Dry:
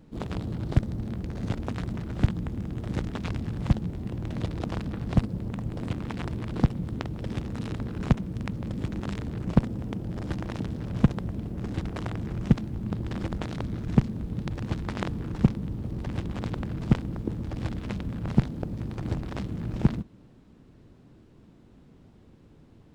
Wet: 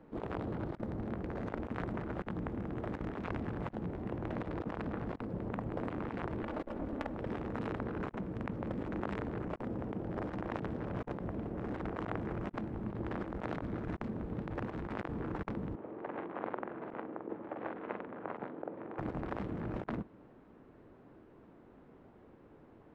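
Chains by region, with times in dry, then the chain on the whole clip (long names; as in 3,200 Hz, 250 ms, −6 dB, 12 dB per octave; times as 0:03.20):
0:06.42–0:07.14: lower of the sound and its delayed copy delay 3.5 ms + notch filter 360 Hz, Q 8.1
0:15.75–0:18.99: high-pass filter 370 Hz + high-frequency loss of the air 450 metres + double-tracking delay 44 ms −5.5 dB
whole clip: three-way crossover with the lows and the highs turned down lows −14 dB, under 320 Hz, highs −22 dB, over 2,100 Hz; compressor whose output falls as the input rises −40 dBFS, ratio −0.5; level +2 dB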